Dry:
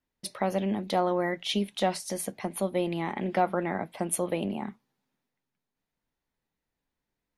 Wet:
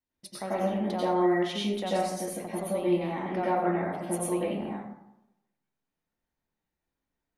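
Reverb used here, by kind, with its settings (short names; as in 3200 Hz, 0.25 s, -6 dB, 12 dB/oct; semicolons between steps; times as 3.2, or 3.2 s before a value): plate-style reverb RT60 0.86 s, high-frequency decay 0.45×, pre-delay 80 ms, DRR -7.5 dB; gain -9 dB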